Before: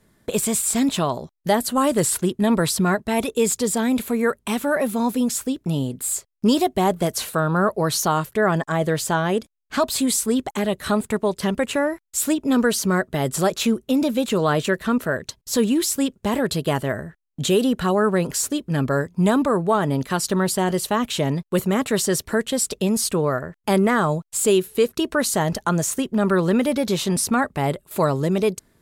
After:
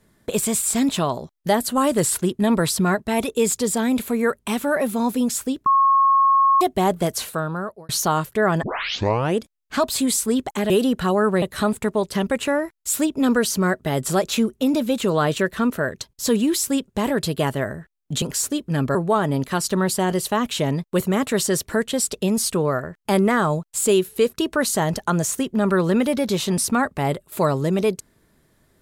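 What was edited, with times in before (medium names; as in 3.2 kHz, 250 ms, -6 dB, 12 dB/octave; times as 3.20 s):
5.66–6.61 s: bleep 1.09 kHz -12.5 dBFS
7.13–7.89 s: fade out
8.63 s: tape start 0.73 s
17.50–18.22 s: move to 10.70 s
18.95–19.54 s: delete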